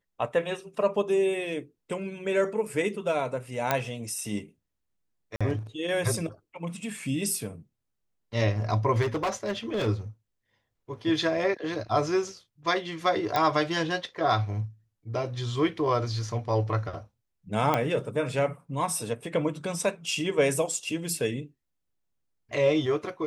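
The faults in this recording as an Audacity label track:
3.710000	3.710000	pop -9 dBFS
5.360000	5.410000	dropout 46 ms
9.010000	9.880000	clipped -24 dBFS
13.360000	13.360000	pop -12 dBFS
17.740000	17.740000	pop -11 dBFS

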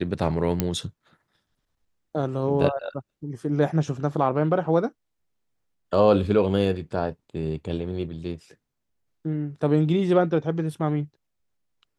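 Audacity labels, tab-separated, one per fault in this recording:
0.600000	0.600000	pop -8 dBFS

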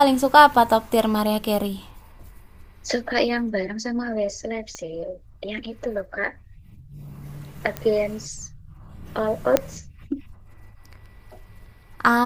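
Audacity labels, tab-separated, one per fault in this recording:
4.750000	4.750000	pop -19 dBFS
7.770000	7.770000	pop -13 dBFS
9.570000	9.570000	pop -3 dBFS

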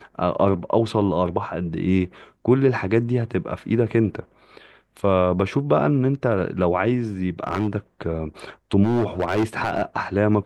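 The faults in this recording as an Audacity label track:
7.440000	7.680000	clipped -16 dBFS
8.830000	9.830000	clipped -16 dBFS

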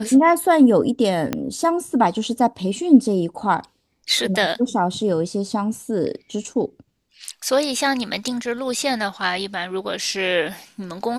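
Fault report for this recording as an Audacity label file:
1.330000	1.330000	pop -8 dBFS

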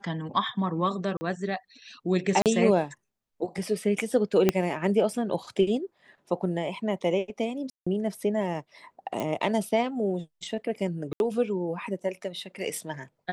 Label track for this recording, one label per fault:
1.170000	1.210000	dropout 40 ms
2.420000	2.460000	dropout 38 ms
4.490000	4.490000	pop -7 dBFS
7.700000	7.870000	dropout 165 ms
9.200000	9.200000	pop -17 dBFS
11.130000	11.200000	dropout 71 ms

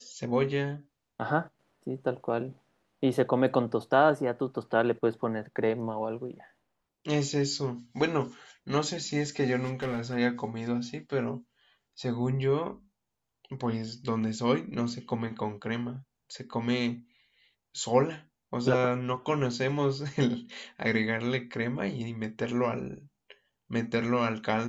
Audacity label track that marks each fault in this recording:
9.640000	10.170000	clipped -27.5 dBFS

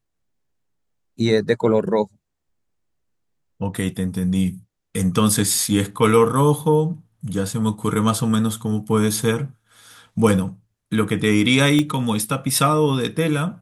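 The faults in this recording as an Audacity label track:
11.790000	11.790000	pop -9 dBFS

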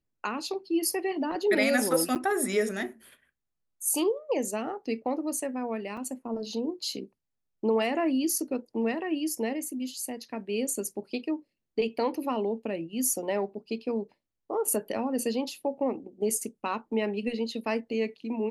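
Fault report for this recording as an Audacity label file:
2.150000	2.160000	dropout 8.4 ms
5.970000	5.970000	dropout 3.8 ms

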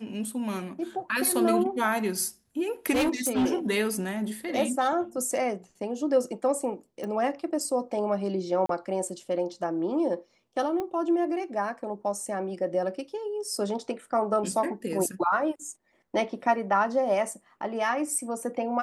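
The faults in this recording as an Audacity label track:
2.920000	3.470000	clipped -20.5 dBFS
7.040000	7.040000	pop
8.660000	8.690000	dropout 33 ms
10.800000	10.800000	pop -20 dBFS

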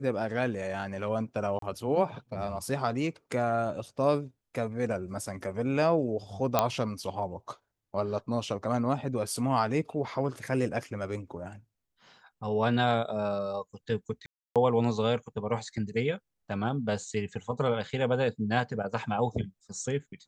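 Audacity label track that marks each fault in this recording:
1.590000	1.620000	dropout 33 ms
6.590000	6.590000	pop -8 dBFS
14.260000	14.560000	dropout 297 ms

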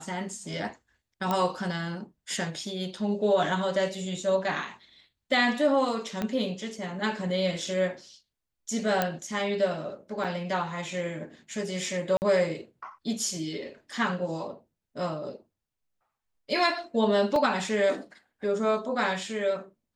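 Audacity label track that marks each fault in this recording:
1.310000	1.310000	pop -14 dBFS
6.220000	6.220000	pop -16 dBFS
9.020000	9.020000	pop -10 dBFS
10.240000	10.240000	dropout 4.6 ms
12.170000	12.220000	dropout 49 ms
17.360000	17.360000	dropout 2.2 ms

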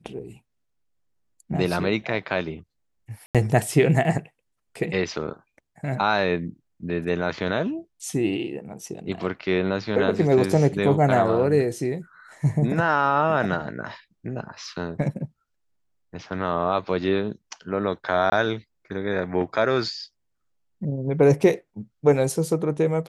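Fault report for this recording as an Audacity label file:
3.260000	3.350000	dropout 87 ms
18.300000	18.320000	dropout 20 ms

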